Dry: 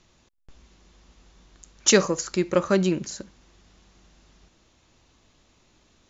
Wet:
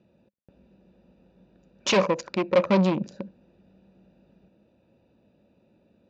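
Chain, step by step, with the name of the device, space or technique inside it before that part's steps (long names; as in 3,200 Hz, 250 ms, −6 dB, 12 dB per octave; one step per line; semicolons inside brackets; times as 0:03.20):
adaptive Wiener filter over 41 samples
0:01.89–0:02.64: bass and treble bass −4 dB, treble −6 dB
guitar amplifier (tube saturation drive 25 dB, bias 0.45; bass and treble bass −1 dB, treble +14 dB; loudspeaker in its box 110–4,200 Hz, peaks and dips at 200 Hz +9 dB, 550 Hz +10 dB, 1,000 Hz +10 dB, 2,400 Hz +9 dB)
level +3 dB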